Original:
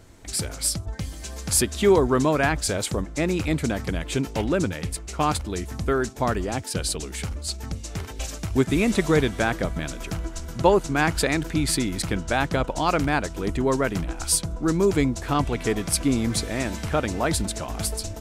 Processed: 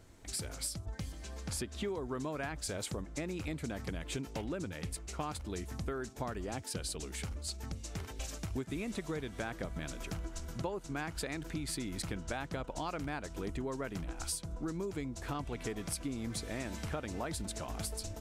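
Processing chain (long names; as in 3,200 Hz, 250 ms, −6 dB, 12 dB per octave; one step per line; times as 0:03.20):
0:01.12–0:01.88: low-pass filter 3,700 Hz 6 dB per octave
downward compressor 10 to 1, threshold −26 dBFS, peak gain reduction 14.5 dB
level −8.5 dB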